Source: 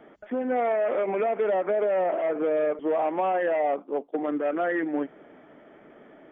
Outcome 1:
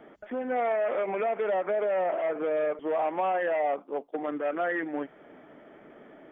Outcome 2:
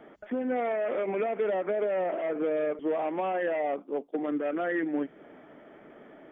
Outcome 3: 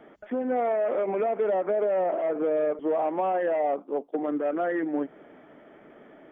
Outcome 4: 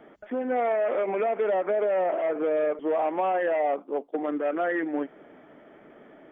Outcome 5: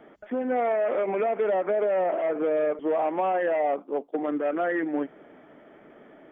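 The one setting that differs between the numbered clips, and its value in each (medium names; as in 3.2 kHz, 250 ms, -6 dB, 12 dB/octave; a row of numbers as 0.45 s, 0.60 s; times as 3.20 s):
dynamic bell, frequency: 290 Hz, 860 Hz, 2.5 kHz, 100 Hz, 7.1 kHz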